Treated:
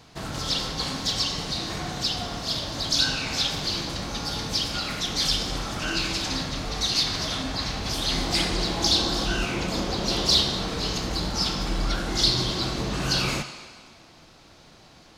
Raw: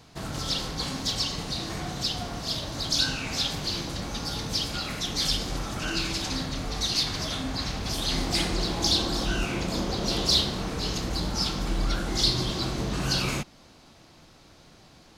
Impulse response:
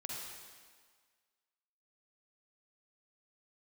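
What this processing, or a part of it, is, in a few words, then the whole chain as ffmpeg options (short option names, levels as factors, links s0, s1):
filtered reverb send: -filter_complex "[0:a]asplit=2[s0][s1];[s1]highpass=f=500:p=1,lowpass=8000[s2];[1:a]atrim=start_sample=2205[s3];[s2][s3]afir=irnorm=-1:irlink=0,volume=0.668[s4];[s0][s4]amix=inputs=2:normalize=0"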